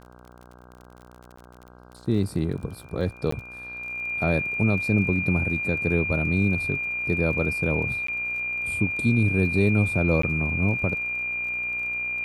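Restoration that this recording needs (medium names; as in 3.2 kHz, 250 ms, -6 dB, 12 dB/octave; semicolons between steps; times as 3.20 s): de-click; de-hum 61.1 Hz, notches 26; band-stop 2.4 kHz, Q 30; interpolate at 1.36/3.31/8.07/10.22 s, 14 ms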